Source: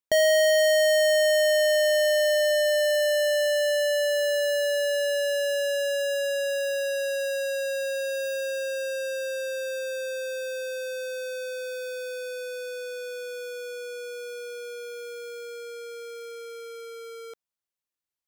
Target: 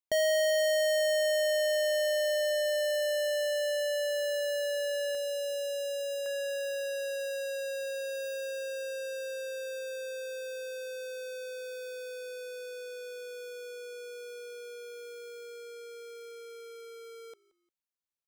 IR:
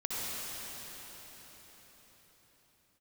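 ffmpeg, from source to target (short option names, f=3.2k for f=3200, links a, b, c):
-filter_complex "[0:a]asetnsamples=n=441:p=0,asendcmd='5.15 equalizer g -15;6.26 equalizer g -2',equalizer=f=1.5k:w=2.1:g=-2.5,asplit=3[a][b][c];[b]adelay=176,afreqshift=-55,volume=-23dB[d];[c]adelay=352,afreqshift=-110,volume=-31.9dB[e];[a][d][e]amix=inputs=3:normalize=0,volume=-6.5dB"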